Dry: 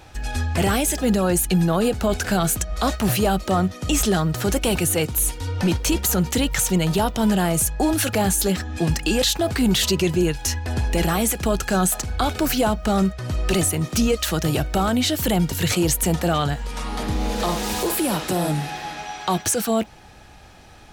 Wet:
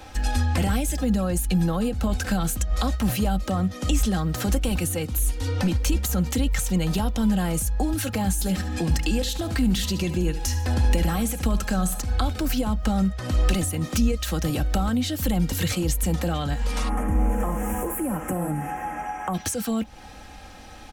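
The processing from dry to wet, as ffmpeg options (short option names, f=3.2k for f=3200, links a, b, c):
-filter_complex "[0:a]asplit=3[a][b][c];[a]afade=t=out:st=8.39:d=0.02[d];[b]aecho=1:1:72|144|216:0.2|0.0678|0.0231,afade=t=in:st=8.39:d=0.02,afade=t=out:st=12:d=0.02[e];[c]afade=t=in:st=12:d=0.02[f];[d][e][f]amix=inputs=3:normalize=0,asplit=3[g][h][i];[g]afade=t=out:st=16.88:d=0.02[j];[h]asuperstop=centerf=4200:order=4:qfactor=0.64,afade=t=in:st=16.88:d=0.02,afade=t=out:st=19.33:d=0.02[k];[i]afade=t=in:st=19.33:d=0.02[l];[j][k][l]amix=inputs=3:normalize=0,aecho=1:1:3.8:0.54,acrossover=split=170[m][n];[n]acompressor=threshold=-29dB:ratio=6[o];[m][o]amix=inputs=2:normalize=0,volume=2dB"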